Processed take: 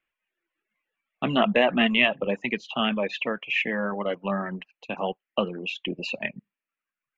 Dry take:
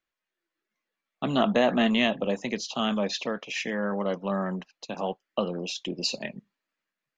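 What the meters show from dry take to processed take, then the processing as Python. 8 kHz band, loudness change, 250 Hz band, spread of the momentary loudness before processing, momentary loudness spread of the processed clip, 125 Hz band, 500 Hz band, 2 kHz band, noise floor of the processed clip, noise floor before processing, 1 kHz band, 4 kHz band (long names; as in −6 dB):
can't be measured, +2.0 dB, 0.0 dB, 11 LU, 11 LU, −0.5 dB, +1.0 dB, +6.5 dB, below −85 dBFS, below −85 dBFS, +2.0 dB, +2.0 dB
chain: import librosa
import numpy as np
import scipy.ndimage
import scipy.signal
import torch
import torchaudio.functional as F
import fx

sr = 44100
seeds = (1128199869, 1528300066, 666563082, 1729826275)

y = fx.dereverb_blind(x, sr, rt60_s=0.99)
y = fx.high_shelf_res(y, sr, hz=3700.0, db=-12.0, q=3.0)
y = y * 10.0 ** (2.0 / 20.0)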